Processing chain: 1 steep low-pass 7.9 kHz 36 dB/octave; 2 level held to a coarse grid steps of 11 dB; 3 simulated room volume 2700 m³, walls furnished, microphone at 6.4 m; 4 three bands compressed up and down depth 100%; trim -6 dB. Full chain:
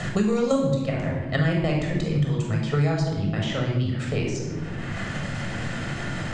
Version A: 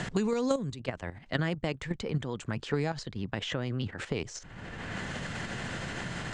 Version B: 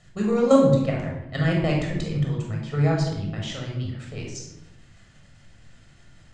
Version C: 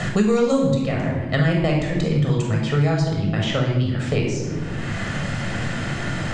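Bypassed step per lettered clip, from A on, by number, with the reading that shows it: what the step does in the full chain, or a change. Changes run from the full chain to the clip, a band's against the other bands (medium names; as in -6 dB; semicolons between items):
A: 3, loudness change -8.5 LU; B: 4, crest factor change +5.5 dB; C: 2, loudness change +4.0 LU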